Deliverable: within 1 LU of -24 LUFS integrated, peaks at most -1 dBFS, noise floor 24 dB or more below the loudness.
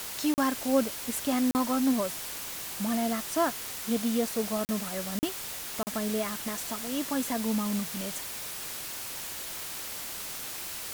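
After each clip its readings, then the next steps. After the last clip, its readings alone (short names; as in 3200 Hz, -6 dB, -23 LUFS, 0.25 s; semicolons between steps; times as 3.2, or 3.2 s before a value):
dropouts 5; longest dropout 39 ms; noise floor -38 dBFS; noise floor target -55 dBFS; loudness -30.5 LUFS; peak -13.5 dBFS; loudness target -24.0 LUFS
-> interpolate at 0.34/1.51/4.65/5.19/5.83, 39 ms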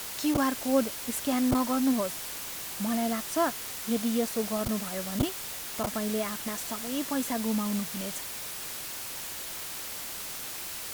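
dropouts 0; noise floor -38 dBFS; noise floor target -55 dBFS
-> denoiser 17 dB, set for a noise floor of -38 dBFS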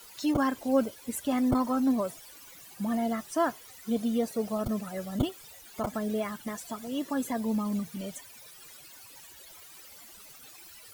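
noise floor -51 dBFS; noise floor target -55 dBFS
-> denoiser 6 dB, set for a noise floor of -51 dBFS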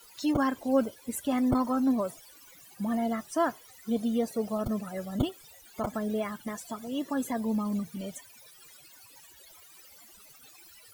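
noise floor -55 dBFS; loudness -30.5 LUFS; peak -13.0 dBFS; loudness target -24.0 LUFS
-> gain +6.5 dB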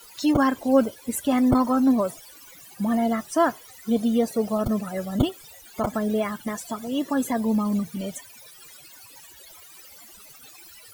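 loudness -24.0 LUFS; peak -6.5 dBFS; noise floor -48 dBFS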